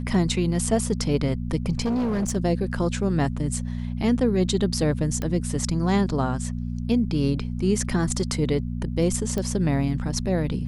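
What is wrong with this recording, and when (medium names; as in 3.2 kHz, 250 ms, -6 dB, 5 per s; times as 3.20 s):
hum 60 Hz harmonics 4 -29 dBFS
1.85–2.37 s: clipped -21 dBFS
5.22 s: pop -15 dBFS
9.38 s: pop -15 dBFS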